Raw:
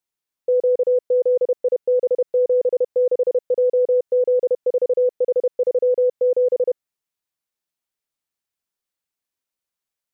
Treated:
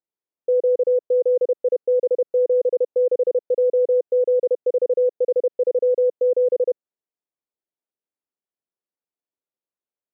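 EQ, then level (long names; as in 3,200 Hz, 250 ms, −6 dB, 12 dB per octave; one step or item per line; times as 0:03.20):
resonant band-pass 410 Hz, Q 1
0.0 dB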